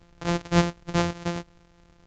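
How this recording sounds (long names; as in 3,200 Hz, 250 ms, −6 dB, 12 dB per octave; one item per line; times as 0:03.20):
a buzz of ramps at a fixed pitch in blocks of 256 samples
A-law companding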